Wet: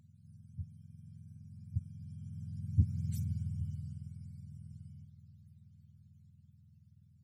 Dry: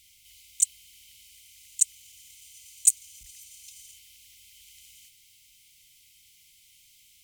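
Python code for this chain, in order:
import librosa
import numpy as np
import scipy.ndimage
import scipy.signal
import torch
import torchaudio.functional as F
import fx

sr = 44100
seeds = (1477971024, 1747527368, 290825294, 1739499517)

y = fx.octave_mirror(x, sr, pivot_hz=680.0)
y = fx.doppler_pass(y, sr, speed_mps=9, closest_m=3.0, pass_at_s=3.16)
y = fx.doppler_dist(y, sr, depth_ms=0.41)
y = F.gain(torch.from_numpy(y), 13.0).numpy()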